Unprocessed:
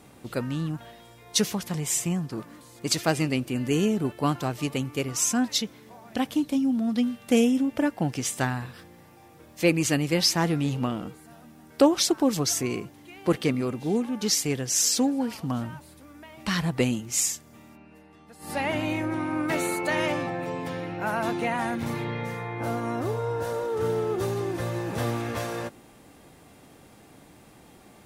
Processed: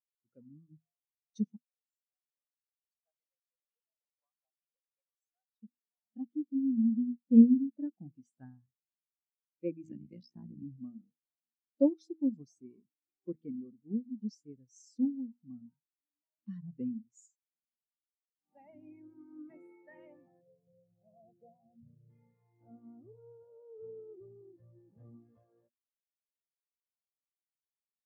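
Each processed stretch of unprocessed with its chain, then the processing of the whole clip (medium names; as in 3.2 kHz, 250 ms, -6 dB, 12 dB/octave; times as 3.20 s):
1.56–5.63 s: brick-wall FIR band-pass 460–13000 Hz + compression 2.5:1, threshold -45 dBFS
9.85–10.63 s: bass shelf 94 Hz +9.5 dB + AM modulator 61 Hz, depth 95% + three bands compressed up and down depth 100%
20.41–22.10 s: Gaussian low-pass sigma 11 samples + comb 1.7 ms, depth 76%
whole clip: de-hum 80.01 Hz, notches 4; dynamic bell 220 Hz, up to +7 dB, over -40 dBFS, Q 3; spectral contrast expander 2.5:1; trim -4 dB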